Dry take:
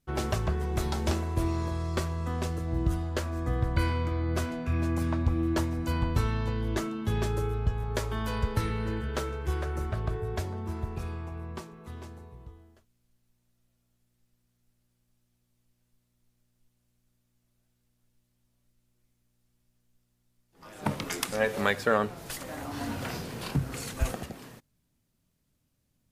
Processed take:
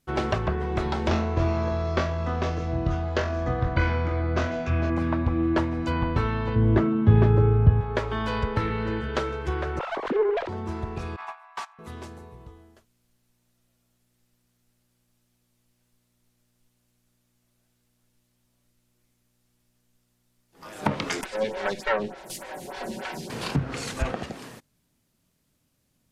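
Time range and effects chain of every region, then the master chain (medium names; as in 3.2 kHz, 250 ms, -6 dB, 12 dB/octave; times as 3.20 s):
1.09–4.90 s: resonant high shelf 7.7 kHz -7.5 dB, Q 3 + flutter echo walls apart 3.9 m, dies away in 0.3 s
6.55–7.81 s: high-pass 75 Hz 24 dB/octave + RIAA curve playback
9.79–10.49 s: formants replaced by sine waves + sliding maximum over 9 samples
11.16–11.79 s: steep high-pass 700 Hz 96 dB/octave + gate -50 dBFS, range -18 dB + overdrive pedal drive 22 dB, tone 1.8 kHz, clips at -28.5 dBFS
21.21–23.30 s: comb filter that takes the minimum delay 5.3 ms + band-stop 1.2 kHz, Q 5.2 + lamp-driven phase shifter 3.4 Hz
whole clip: low-pass that closes with the level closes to 2.7 kHz, closed at -25 dBFS; bass shelf 140 Hz -8 dB; trim +6.5 dB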